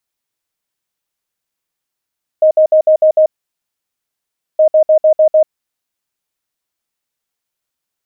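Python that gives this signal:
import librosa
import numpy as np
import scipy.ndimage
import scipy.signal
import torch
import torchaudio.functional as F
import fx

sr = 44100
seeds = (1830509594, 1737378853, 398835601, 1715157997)

y = fx.beep_pattern(sr, wave='sine', hz=624.0, on_s=0.09, off_s=0.06, beeps=6, pause_s=1.33, groups=2, level_db=-5.0)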